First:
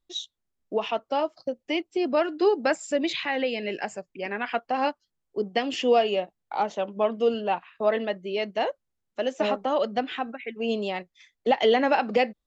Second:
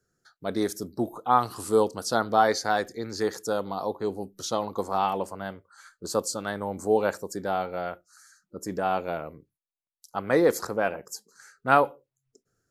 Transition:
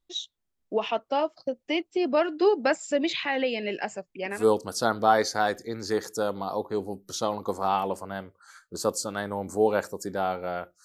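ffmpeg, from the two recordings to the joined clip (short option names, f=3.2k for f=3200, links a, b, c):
-filter_complex "[0:a]apad=whole_dur=10.84,atrim=end=10.84,atrim=end=4.46,asetpts=PTS-STARTPTS[a];[1:a]atrim=start=1.6:end=8.14,asetpts=PTS-STARTPTS[b];[a][b]acrossfade=d=0.16:c1=tri:c2=tri"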